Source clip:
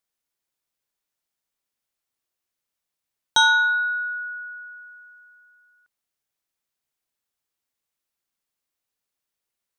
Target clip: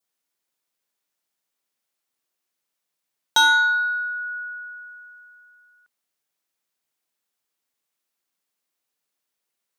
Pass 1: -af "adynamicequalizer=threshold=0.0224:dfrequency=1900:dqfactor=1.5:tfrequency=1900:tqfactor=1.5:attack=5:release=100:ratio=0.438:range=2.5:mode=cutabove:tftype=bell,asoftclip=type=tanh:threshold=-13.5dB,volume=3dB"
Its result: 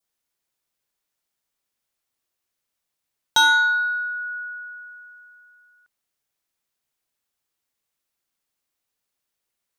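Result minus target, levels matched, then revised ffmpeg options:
125 Hz band +7.0 dB
-af "adynamicequalizer=threshold=0.0224:dfrequency=1900:dqfactor=1.5:tfrequency=1900:tqfactor=1.5:attack=5:release=100:ratio=0.438:range=2.5:mode=cutabove:tftype=bell,highpass=160,asoftclip=type=tanh:threshold=-13.5dB,volume=3dB"

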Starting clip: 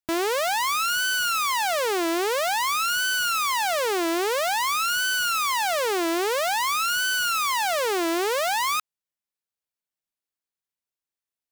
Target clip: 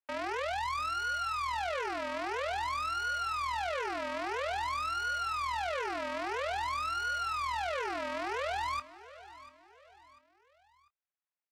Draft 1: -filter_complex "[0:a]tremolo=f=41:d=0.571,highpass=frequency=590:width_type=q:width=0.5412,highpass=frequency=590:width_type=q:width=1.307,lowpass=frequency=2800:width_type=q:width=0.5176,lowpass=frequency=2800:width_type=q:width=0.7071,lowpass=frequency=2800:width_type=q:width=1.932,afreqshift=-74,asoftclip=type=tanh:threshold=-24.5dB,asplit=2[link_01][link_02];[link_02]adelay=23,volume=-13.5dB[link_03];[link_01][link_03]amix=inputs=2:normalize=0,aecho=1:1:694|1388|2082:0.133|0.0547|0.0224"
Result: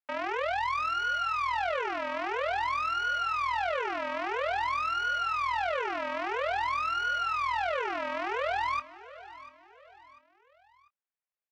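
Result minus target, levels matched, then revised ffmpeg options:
soft clipping: distortion −7 dB
-filter_complex "[0:a]tremolo=f=41:d=0.571,highpass=frequency=590:width_type=q:width=0.5412,highpass=frequency=590:width_type=q:width=1.307,lowpass=frequency=2800:width_type=q:width=0.5176,lowpass=frequency=2800:width_type=q:width=0.7071,lowpass=frequency=2800:width_type=q:width=1.932,afreqshift=-74,asoftclip=type=tanh:threshold=-32dB,asplit=2[link_01][link_02];[link_02]adelay=23,volume=-13.5dB[link_03];[link_01][link_03]amix=inputs=2:normalize=0,aecho=1:1:694|1388|2082:0.133|0.0547|0.0224"

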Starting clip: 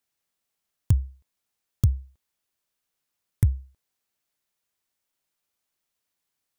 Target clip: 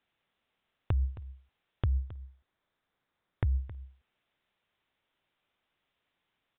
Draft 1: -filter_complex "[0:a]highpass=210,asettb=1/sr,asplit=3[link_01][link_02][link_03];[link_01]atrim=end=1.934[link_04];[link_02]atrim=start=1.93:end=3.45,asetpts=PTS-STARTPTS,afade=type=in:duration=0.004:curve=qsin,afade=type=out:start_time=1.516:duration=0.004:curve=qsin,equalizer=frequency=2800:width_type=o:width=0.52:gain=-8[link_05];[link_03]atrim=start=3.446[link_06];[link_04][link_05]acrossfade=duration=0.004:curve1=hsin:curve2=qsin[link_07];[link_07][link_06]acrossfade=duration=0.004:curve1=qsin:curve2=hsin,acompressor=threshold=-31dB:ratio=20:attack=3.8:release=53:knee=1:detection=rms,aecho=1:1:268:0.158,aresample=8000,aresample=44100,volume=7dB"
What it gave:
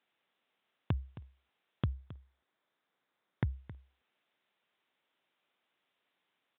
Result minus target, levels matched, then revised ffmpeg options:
250 Hz band +9.0 dB
-filter_complex "[0:a]asettb=1/sr,asplit=3[link_01][link_02][link_03];[link_01]atrim=end=1.934[link_04];[link_02]atrim=start=1.93:end=3.45,asetpts=PTS-STARTPTS,afade=type=in:duration=0.004:curve=qsin,afade=type=out:start_time=1.516:duration=0.004:curve=qsin,equalizer=frequency=2800:width_type=o:width=0.52:gain=-8[link_05];[link_03]atrim=start=3.446[link_06];[link_04][link_05]acrossfade=duration=0.004:curve1=hsin:curve2=qsin[link_07];[link_07][link_06]acrossfade=duration=0.004:curve1=qsin:curve2=hsin,acompressor=threshold=-31dB:ratio=20:attack=3.8:release=53:knee=1:detection=rms,aecho=1:1:268:0.158,aresample=8000,aresample=44100,volume=7dB"

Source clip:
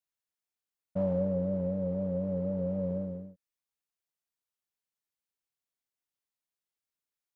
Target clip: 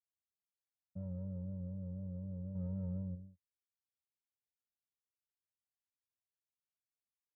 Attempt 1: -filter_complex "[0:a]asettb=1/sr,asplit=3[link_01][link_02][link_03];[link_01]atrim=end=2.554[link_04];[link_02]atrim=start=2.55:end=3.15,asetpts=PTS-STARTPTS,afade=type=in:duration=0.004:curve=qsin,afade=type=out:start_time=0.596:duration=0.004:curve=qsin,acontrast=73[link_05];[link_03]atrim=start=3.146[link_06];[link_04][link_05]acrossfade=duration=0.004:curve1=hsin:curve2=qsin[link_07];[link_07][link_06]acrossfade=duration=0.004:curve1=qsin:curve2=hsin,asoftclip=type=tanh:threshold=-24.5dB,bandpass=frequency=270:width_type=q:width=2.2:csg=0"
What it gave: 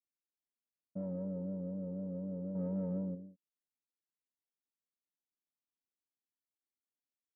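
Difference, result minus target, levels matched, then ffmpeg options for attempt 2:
125 Hz band −4.0 dB
-filter_complex "[0:a]asettb=1/sr,asplit=3[link_01][link_02][link_03];[link_01]atrim=end=2.554[link_04];[link_02]atrim=start=2.55:end=3.15,asetpts=PTS-STARTPTS,afade=type=in:duration=0.004:curve=qsin,afade=type=out:start_time=0.596:duration=0.004:curve=qsin,acontrast=73[link_05];[link_03]atrim=start=3.146[link_06];[link_04][link_05]acrossfade=duration=0.004:curve1=hsin:curve2=qsin[link_07];[link_07][link_06]acrossfade=duration=0.004:curve1=qsin:curve2=hsin,asoftclip=type=tanh:threshold=-24.5dB,bandpass=frequency=89:width_type=q:width=2.2:csg=0"

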